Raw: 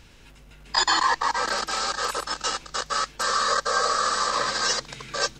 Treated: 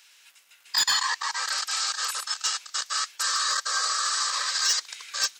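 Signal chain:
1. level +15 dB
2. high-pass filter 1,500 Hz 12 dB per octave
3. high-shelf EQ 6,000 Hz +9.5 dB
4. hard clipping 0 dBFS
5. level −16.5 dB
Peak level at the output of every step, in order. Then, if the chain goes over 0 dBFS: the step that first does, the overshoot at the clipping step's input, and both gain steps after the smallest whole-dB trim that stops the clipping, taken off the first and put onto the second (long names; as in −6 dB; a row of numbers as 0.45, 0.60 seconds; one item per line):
+7.5, +6.0, +9.5, 0.0, −16.5 dBFS
step 1, 9.5 dB
step 1 +5 dB, step 5 −6.5 dB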